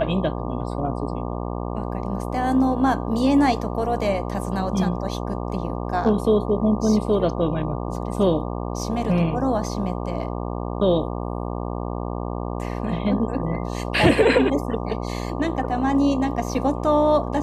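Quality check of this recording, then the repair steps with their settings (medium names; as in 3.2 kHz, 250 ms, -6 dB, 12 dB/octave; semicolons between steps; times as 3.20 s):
buzz 60 Hz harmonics 20 -28 dBFS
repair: de-hum 60 Hz, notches 20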